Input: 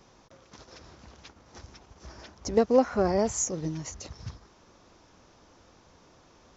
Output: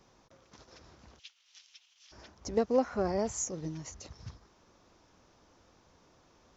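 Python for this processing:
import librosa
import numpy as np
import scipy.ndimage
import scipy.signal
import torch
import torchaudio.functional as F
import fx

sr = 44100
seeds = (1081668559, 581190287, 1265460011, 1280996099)

y = fx.highpass_res(x, sr, hz=3000.0, q=3.2, at=(1.18, 2.11), fade=0.02)
y = y * 10.0 ** (-6.0 / 20.0)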